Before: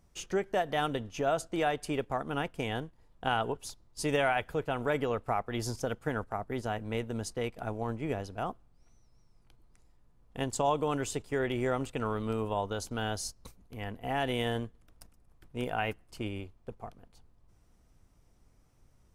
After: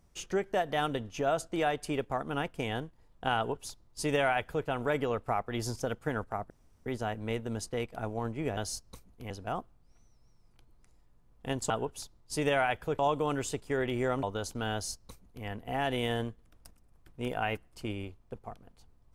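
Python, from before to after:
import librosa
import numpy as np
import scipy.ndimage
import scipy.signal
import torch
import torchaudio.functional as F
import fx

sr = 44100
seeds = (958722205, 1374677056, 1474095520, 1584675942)

y = fx.edit(x, sr, fx.duplicate(start_s=3.37, length_s=1.29, to_s=10.61),
    fx.insert_room_tone(at_s=6.5, length_s=0.36),
    fx.cut(start_s=11.85, length_s=0.74),
    fx.duplicate(start_s=13.09, length_s=0.73, to_s=8.21), tone=tone)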